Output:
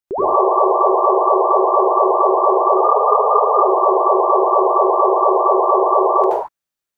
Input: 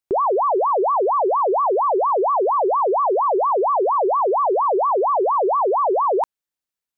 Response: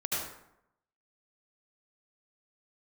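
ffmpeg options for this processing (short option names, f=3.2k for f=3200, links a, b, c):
-filter_complex "[0:a]asettb=1/sr,asplit=3[a][b][c];[a]atrim=end=2.754[d];[b]atrim=start=2.75:end=3.52,asetpts=PTS-STARTPTS,afade=t=in:d=0.004:c=qsin,afade=t=out:st=0.766:d=0.004:c=qsin,afreqshift=49[e];[c]atrim=start=3.516[f];[d][e]acrossfade=d=0.004:c1=hsin:c2=qsin[g];[g][f]acrossfade=d=0.004:c1=qsin:c2=hsin[h];[1:a]atrim=start_sample=2205,afade=t=out:st=0.29:d=0.01,atrim=end_sample=13230[i];[h][i]afir=irnorm=-1:irlink=0,volume=-2dB"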